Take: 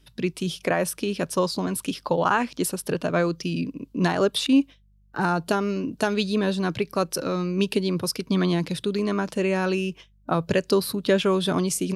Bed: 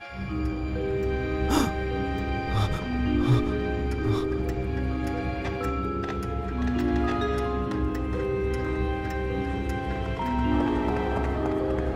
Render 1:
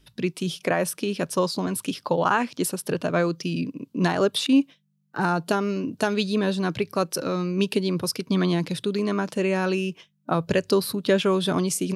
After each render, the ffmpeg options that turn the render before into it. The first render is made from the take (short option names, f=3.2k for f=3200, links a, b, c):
-af "bandreject=f=50:t=h:w=4,bandreject=f=100:t=h:w=4"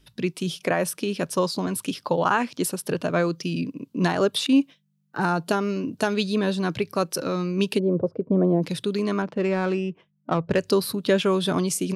-filter_complex "[0:a]asplit=3[a][b][c];[a]afade=t=out:st=7.78:d=0.02[d];[b]lowpass=f=560:t=q:w=3.1,afade=t=in:st=7.78:d=0.02,afade=t=out:st=8.62:d=0.02[e];[c]afade=t=in:st=8.62:d=0.02[f];[d][e][f]amix=inputs=3:normalize=0,asettb=1/sr,asplit=3[g][h][i];[g]atrim=end=9.224[j];[h]atrim=start=9.22:end=10.59,asetpts=PTS-STARTPTS,afade=t=in:d=0.004:c=qsin,afade=t=out:st=1.366:d=0.004:c=qsin,adynamicsmooth=sensitivity=1.5:basefreq=1.4k[k];[i]atrim=start=10.586[l];[j][k]acrossfade=d=0.004:c1=hsin:c2=qsin[m];[m][l]acrossfade=d=0.004:c1=qsin:c2=hsin"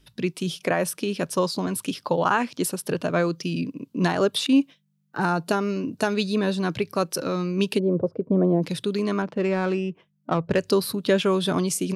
-filter_complex "[0:a]asettb=1/sr,asplit=3[a][b][c];[a]atrim=end=5.304[d];[b]atrim=start=5.3:end=6.56,asetpts=PTS-STARTPTS,afade=t=in:d=0.004:c=qsin,afade=t=out:st=1.256:d=0.004:c=qsin,bandreject=f=3.2k:w=12[e];[c]atrim=start=6.556[f];[d][e]acrossfade=d=0.004:c1=hsin:c2=qsin[g];[g][f]acrossfade=d=0.004:c1=qsin:c2=hsin"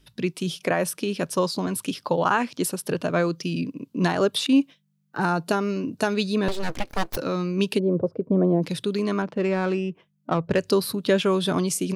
-filter_complex "[0:a]asettb=1/sr,asplit=3[a][b][c];[a]atrim=end=6.484[d];[b]atrim=start=6.48:end=7.17,asetpts=PTS-STARTPTS,afade=t=in:d=0.004:c=qsin,afade=t=out:st=0.686:d=0.004:c=qsin,aeval=exprs='abs(val(0))':c=same[e];[c]atrim=start=7.166[f];[d][e]acrossfade=d=0.004:c1=hsin:c2=qsin[g];[g][f]acrossfade=d=0.004:c1=qsin:c2=hsin"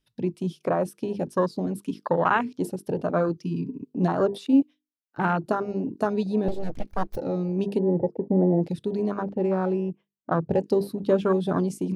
-af "bandreject=f=50:t=h:w=6,bandreject=f=100:t=h:w=6,bandreject=f=150:t=h:w=6,bandreject=f=200:t=h:w=6,bandreject=f=250:t=h:w=6,bandreject=f=300:t=h:w=6,bandreject=f=350:t=h:w=6,bandreject=f=400:t=h:w=6,bandreject=f=450:t=h:w=6,afwtdn=0.0562"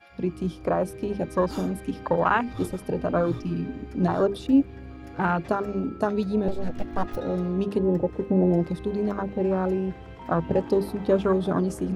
-filter_complex "[1:a]volume=-13dB[a];[0:a][a]amix=inputs=2:normalize=0"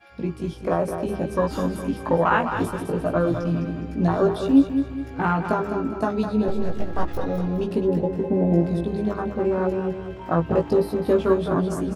-filter_complex "[0:a]asplit=2[a][b];[b]adelay=18,volume=-3dB[c];[a][c]amix=inputs=2:normalize=0,aecho=1:1:207|414|621|828|1035:0.398|0.159|0.0637|0.0255|0.0102"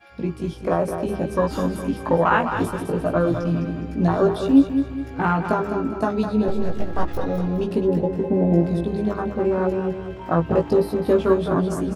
-af "volume=1.5dB"